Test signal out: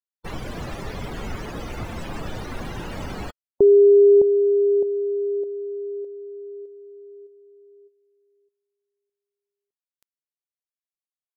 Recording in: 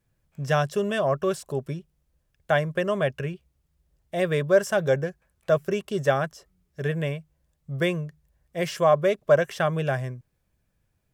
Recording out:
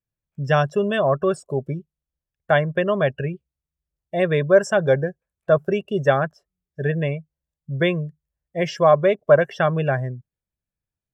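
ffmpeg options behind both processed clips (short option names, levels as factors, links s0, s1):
-af "afftdn=nr=22:nf=-37,volume=1.68"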